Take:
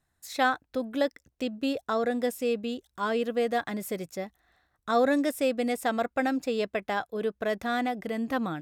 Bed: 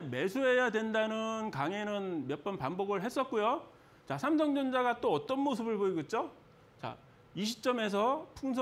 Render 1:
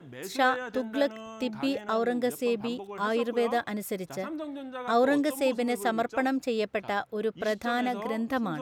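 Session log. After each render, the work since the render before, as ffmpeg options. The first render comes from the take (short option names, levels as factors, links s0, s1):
-filter_complex "[1:a]volume=0.447[s0];[0:a][s0]amix=inputs=2:normalize=0"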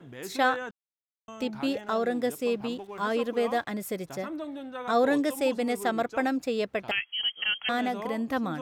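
-filter_complex "[0:a]asettb=1/sr,asplit=3[s0][s1][s2];[s0]atrim=end=1.834[s3];[s1]atrim=start=1.83:end=3.67,asetpts=PTS-STARTPTS,afade=t=in:d=0.004:c=qsin,afade=t=out:st=1.836:d=0.004:c=qsin,aeval=exprs='sgn(val(0))*max(abs(val(0))-0.00126,0)':c=same[s4];[s2]atrim=start=3.666[s5];[s3][s4]acrossfade=d=0.004:c1=hsin:c2=qsin[s6];[s6][s5]acrossfade=d=0.004:c1=qsin:c2=hsin,asettb=1/sr,asplit=3[s7][s8][s9];[s7]atrim=end=6.914[s10];[s8]atrim=start=6.91:end=7.69,asetpts=PTS-STARTPTS,afade=t=in:d=0.004:c=qsin,afade=t=out:st=0.776:d=0.004:c=qsin,lowpass=f=2900:t=q:w=0.5098,lowpass=f=2900:t=q:w=0.6013,lowpass=f=2900:t=q:w=0.9,lowpass=f=2900:t=q:w=2.563,afreqshift=-3400[s11];[s9]atrim=start=7.686[s12];[s10][s11]acrossfade=d=0.004:c1=hsin:c2=qsin[s13];[s13][s12]acrossfade=d=0.004:c1=qsin:c2=hsin,asplit=3[s14][s15][s16];[s14]atrim=end=0.71,asetpts=PTS-STARTPTS,afade=t=out:st=0.706:d=0.004:c=hsin[s17];[s15]atrim=start=0.71:end=1.28,asetpts=PTS-STARTPTS,volume=0[s18];[s16]atrim=start=1.28,asetpts=PTS-STARTPTS,afade=t=in:d=0.004:c=hsin[s19];[s17][s18][s19]concat=n=3:v=0:a=1"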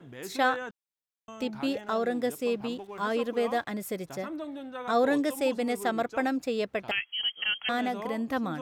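-af "volume=0.891"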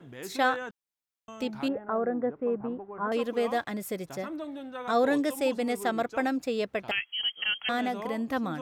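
-filter_complex "[0:a]asettb=1/sr,asplit=3[s0][s1][s2];[s0]atrim=end=1.684[s3];[s1]atrim=start=1.68:end=3.12,asetpts=PTS-STARTPTS,afade=t=in:d=0.004:c=qsin,afade=t=out:st=1.436:d=0.004:c=qsin,lowpass=f=1500:w=0.5412,lowpass=f=1500:w=1.3066[s4];[s2]atrim=start=3.116[s5];[s3][s4]acrossfade=d=0.004:c1=hsin:c2=qsin[s6];[s6][s5]acrossfade=d=0.004:c1=qsin:c2=hsin"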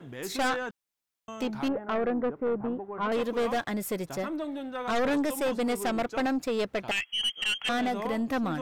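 -af "aeval=exprs='0.211*(cos(1*acos(clip(val(0)/0.211,-1,1)))-cos(1*PI/2))+0.0473*(cos(2*acos(clip(val(0)/0.211,-1,1)))-cos(2*PI/2))+0.0944*(cos(4*acos(clip(val(0)/0.211,-1,1)))-cos(4*PI/2))+0.0237*(cos(5*acos(clip(val(0)/0.211,-1,1)))-cos(5*PI/2))+0.0237*(cos(6*acos(clip(val(0)/0.211,-1,1)))-cos(6*PI/2))':c=same,asoftclip=type=tanh:threshold=0.0841"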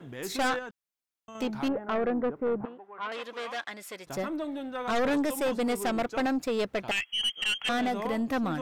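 -filter_complex "[0:a]asettb=1/sr,asplit=3[s0][s1][s2];[s0]atrim=end=2.654[s3];[s1]atrim=start=2.65:end=4.07,asetpts=PTS-STARTPTS,afade=t=in:d=0.004:c=qsin,afade=t=out:st=1.416:d=0.004:c=qsin,bandpass=f=2800:t=q:w=0.58[s4];[s2]atrim=start=4.066[s5];[s3][s4]acrossfade=d=0.004:c1=hsin:c2=qsin[s6];[s6][s5]acrossfade=d=0.004:c1=qsin:c2=hsin,asplit=3[s7][s8][s9];[s7]atrim=end=0.592[s10];[s8]atrim=start=0.588:end=1.352,asetpts=PTS-STARTPTS,volume=0.531[s11];[s9]atrim=start=1.348[s12];[s10][s11]acrossfade=d=0.004:c1=hsin:c2=hsin[s13];[s13][s12]acrossfade=d=0.004:c1=hsin:c2=hsin"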